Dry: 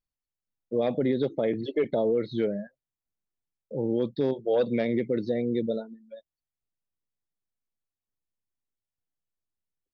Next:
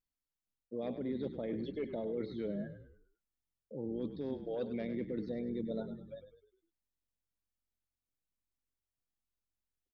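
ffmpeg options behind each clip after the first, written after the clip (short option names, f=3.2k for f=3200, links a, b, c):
-filter_complex "[0:a]equalizer=f=260:t=o:w=0.7:g=5,areverse,acompressor=threshold=-31dB:ratio=6,areverse,asplit=6[a][b][c][d][e][f];[b]adelay=101,afreqshift=-45,volume=-10dB[g];[c]adelay=202,afreqshift=-90,volume=-16.6dB[h];[d]adelay=303,afreqshift=-135,volume=-23.1dB[i];[e]adelay=404,afreqshift=-180,volume=-29.7dB[j];[f]adelay=505,afreqshift=-225,volume=-36.2dB[k];[a][g][h][i][j][k]amix=inputs=6:normalize=0,volume=-4.5dB"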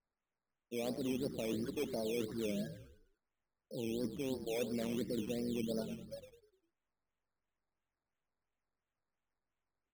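-af "acrusher=samples=12:mix=1:aa=0.000001:lfo=1:lforange=7.2:lforate=2.9"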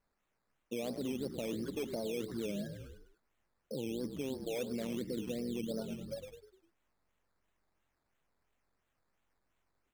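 -af "acompressor=threshold=-50dB:ratio=2.5,volume=10dB"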